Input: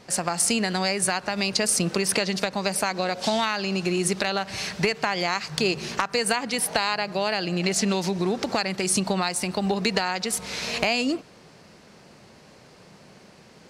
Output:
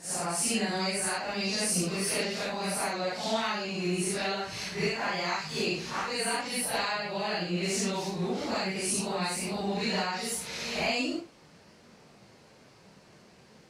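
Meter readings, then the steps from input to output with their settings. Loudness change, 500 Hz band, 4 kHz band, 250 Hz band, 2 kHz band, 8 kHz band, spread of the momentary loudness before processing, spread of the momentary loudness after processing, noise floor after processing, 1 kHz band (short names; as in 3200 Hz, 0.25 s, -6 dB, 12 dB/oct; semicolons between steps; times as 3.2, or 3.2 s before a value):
-5.5 dB, -6.0 dB, -5.5 dB, -6.0 dB, -5.5 dB, -5.5 dB, 4 LU, 4 LU, -57 dBFS, -5.5 dB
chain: phase scrambler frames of 0.2 s; gain -5.5 dB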